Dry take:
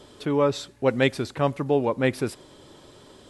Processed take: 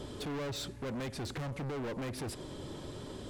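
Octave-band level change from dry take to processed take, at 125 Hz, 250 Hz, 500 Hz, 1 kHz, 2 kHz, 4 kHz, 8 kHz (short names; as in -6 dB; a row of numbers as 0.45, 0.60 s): -9.5, -12.5, -17.0, -15.0, -14.5, -7.5, -4.0 dB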